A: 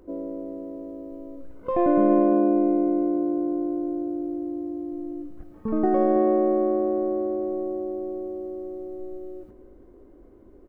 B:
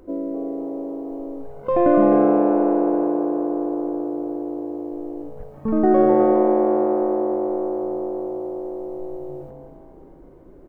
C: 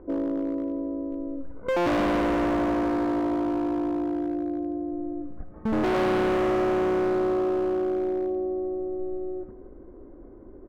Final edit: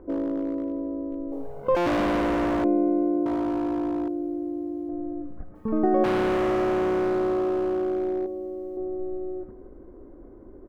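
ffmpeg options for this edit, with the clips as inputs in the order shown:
-filter_complex "[0:a]asplit=4[s0][s1][s2][s3];[2:a]asplit=6[s4][s5][s6][s7][s8][s9];[s4]atrim=end=1.322[s10];[1:a]atrim=start=1.318:end=1.752[s11];[s5]atrim=start=1.748:end=2.642[s12];[s0]atrim=start=2.638:end=3.262[s13];[s6]atrim=start=3.258:end=4.082[s14];[s1]atrim=start=4.078:end=4.892[s15];[s7]atrim=start=4.888:end=5.552[s16];[s2]atrim=start=5.548:end=6.042[s17];[s8]atrim=start=6.038:end=8.262[s18];[s3]atrim=start=8.258:end=8.772[s19];[s9]atrim=start=8.768[s20];[s10][s11]acrossfade=d=0.004:c1=hsin:c2=hsin[s21];[s21][s12]acrossfade=d=0.004:c1=hsin:c2=hsin[s22];[s22][s13]acrossfade=d=0.004:c1=hsin:c2=hsin[s23];[s23][s14]acrossfade=d=0.004:c1=hsin:c2=hsin[s24];[s24][s15]acrossfade=d=0.004:c1=hsin:c2=hsin[s25];[s25][s16]acrossfade=d=0.004:c1=hsin:c2=hsin[s26];[s26][s17]acrossfade=d=0.004:c1=hsin:c2=hsin[s27];[s27][s18]acrossfade=d=0.004:c1=hsin:c2=hsin[s28];[s28][s19]acrossfade=d=0.004:c1=hsin:c2=hsin[s29];[s29][s20]acrossfade=d=0.004:c1=hsin:c2=hsin"

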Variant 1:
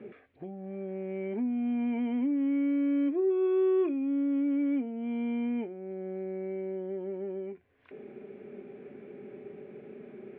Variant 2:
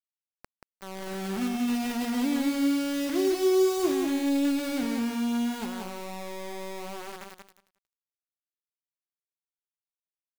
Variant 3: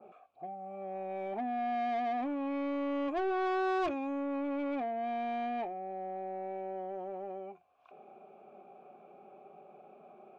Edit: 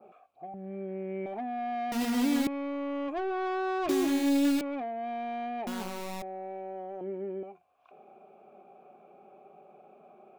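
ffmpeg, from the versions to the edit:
-filter_complex "[0:a]asplit=2[s0][s1];[1:a]asplit=3[s2][s3][s4];[2:a]asplit=6[s5][s6][s7][s8][s9][s10];[s5]atrim=end=0.542[s11];[s0]atrim=start=0.538:end=1.262[s12];[s6]atrim=start=1.258:end=1.922[s13];[s2]atrim=start=1.918:end=2.472[s14];[s7]atrim=start=2.468:end=3.892[s15];[s3]atrim=start=3.888:end=4.612[s16];[s8]atrim=start=4.608:end=5.672[s17];[s4]atrim=start=5.668:end=6.222[s18];[s9]atrim=start=6.218:end=7.012[s19];[s1]atrim=start=7.008:end=7.432[s20];[s10]atrim=start=7.428[s21];[s11][s12]acrossfade=d=0.004:c1=hsin:c2=hsin[s22];[s22][s13]acrossfade=d=0.004:c1=hsin:c2=hsin[s23];[s23][s14]acrossfade=d=0.004:c1=hsin:c2=hsin[s24];[s24][s15]acrossfade=d=0.004:c1=hsin:c2=hsin[s25];[s25][s16]acrossfade=d=0.004:c1=hsin:c2=hsin[s26];[s26][s17]acrossfade=d=0.004:c1=hsin:c2=hsin[s27];[s27][s18]acrossfade=d=0.004:c1=hsin:c2=hsin[s28];[s28][s19]acrossfade=d=0.004:c1=hsin:c2=hsin[s29];[s29][s20]acrossfade=d=0.004:c1=hsin:c2=hsin[s30];[s30][s21]acrossfade=d=0.004:c1=hsin:c2=hsin"

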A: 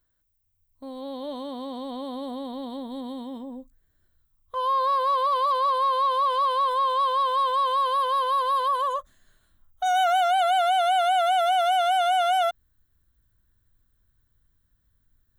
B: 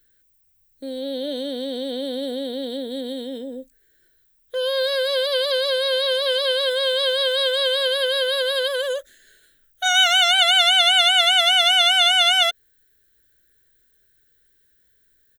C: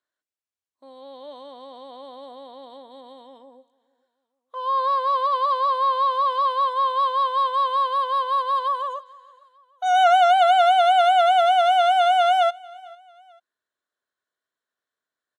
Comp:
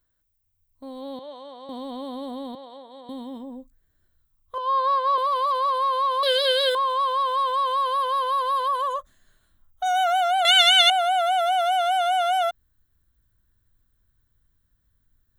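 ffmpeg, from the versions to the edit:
-filter_complex "[2:a]asplit=3[s0][s1][s2];[1:a]asplit=2[s3][s4];[0:a]asplit=6[s5][s6][s7][s8][s9][s10];[s5]atrim=end=1.192[s11];[s0]atrim=start=1.188:end=1.692[s12];[s6]atrim=start=1.688:end=2.552[s13];[s1]atrim=start=2.548:end=3.092[s14];[s7]atrim=start=3.088:end=4.582[s15];[s2]atrim=start=4.578:end=5.182[s16];[s8]atrim=start=5.178:end=6.232[s17];[s3]atrim=start=6.228:end=6.752[s18];[s9]atrim=start=6.748:end=10.452[s19];[s4]atrim=start=10.448:end=10.902[s20];[s10]atrim=start=10.898[s21];[s11][s12]acrossfade=d=0.004:c1=hsin:c2=hsin[s22];[s22][s13]acrossfade=d=0.004:c1=hsin:c2=hsin[s23];[s23][s14]acrossfade=d=0.004:c1=hsin:c2=hsin[s24];[s24][s15]acrossfade=d=0.004:c1=hsin:c2=hsin[s25];[s25][s16]acrossfade=d=0.004:c1=hsin:c2=hsin[s26];[s26][s17]acrossfade=d=0.004:c1=hsin:c2=hsin[s27];[s27][s18]acrossfade=d=0.004:c1=hsin:c2=hsin[s28];[s28][s19]acrossfade=d=0.004:c1=hsin:c2=hsin[s29];[s29][s20]acrossfade=d=0.004:c1=hsin:c2=hsin[s30];[s30][s21]acrossfade=d=0.004:c1=hsin:c2=hsin"

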